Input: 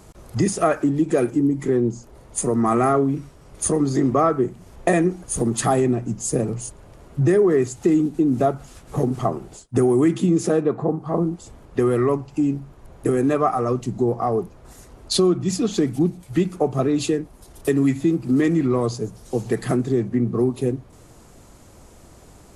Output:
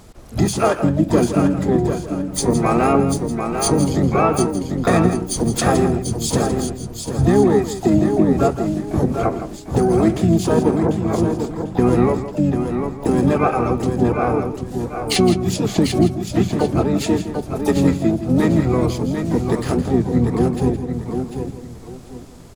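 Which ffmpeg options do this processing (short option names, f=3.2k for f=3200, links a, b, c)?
-filter_complex "[0:a]asplit=2[a][b];[b]aecho=0:1:744|1488|2232|2976:0.473|0.132|0.0371|0.0104[c];[a][c]amix=inputs=2:normalize=0,asplit=4[d][e][f][g];[e]asetrate=22050,aresample=44100,atempo=2,volume=-7dB[h];[f]asetrate=29433,aresample=44100,atempo=1.49831,volume=-4dB[i];[g]asetrate=88200,aresample=44100,atempo=0.5,volume=-11dB[j];[d][h][i][j]amix=inputs=4:normalize=0,asplit=2[k][l];[l]aecho=0:1:164:0.282[m];[k][m]amix=inputs=2:normalize=0"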